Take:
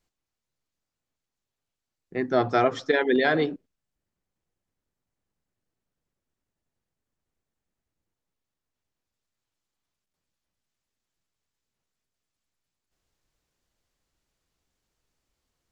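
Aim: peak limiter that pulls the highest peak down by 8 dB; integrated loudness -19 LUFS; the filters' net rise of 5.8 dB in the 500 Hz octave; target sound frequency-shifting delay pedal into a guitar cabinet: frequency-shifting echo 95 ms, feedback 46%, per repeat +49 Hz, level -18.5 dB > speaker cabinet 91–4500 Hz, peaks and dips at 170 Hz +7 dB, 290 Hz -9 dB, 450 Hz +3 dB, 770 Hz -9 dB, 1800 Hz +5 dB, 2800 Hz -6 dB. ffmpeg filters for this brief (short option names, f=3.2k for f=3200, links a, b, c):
-filter_complex "[0:a]equalizer=f=500:t=o:g=7.5,alimiter=limit=-12dB:level=0:latency=1,asplit=5[a][b][c][d][e];[b]adelay=95,afreqshift=49,volume=-18.5dB[f];[c]adelay=190,afreqshift=98,volume=-25.2dB[g];[d]adelay=285,afreqshift=147,volume=-32dB[h];[e]adelay=380,afreqshift=196,volume=-38.7dB[i];[a][f][g][h][i]amix=inputs=5:normalize=0,highpass=91,equalizer=f=170:t=q:w=4:g=7,equalizer=f=290:t=q:w=4:g=-9,equalizer=f=450:t=q:w=4:g=3,equalizer=f=770:t=q:w=4:g=-9,equalizer=f=1.8k:t=q:w=4:g=5,equalizer=f=2.8k:t=q:w=4:g=-6,lowpass=f=4.5k:w=0.5412,lowpass=f=4.5k:w=1.3066,volume=4.5dB"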